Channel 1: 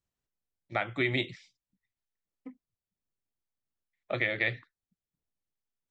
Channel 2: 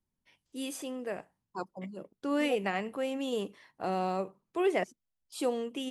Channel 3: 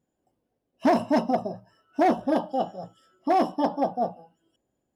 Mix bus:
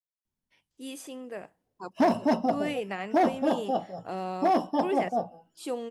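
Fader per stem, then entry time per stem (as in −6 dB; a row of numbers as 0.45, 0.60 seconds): muted, −2.5 dB, −2.0 dB; muted, 0.25 s, 1.15 s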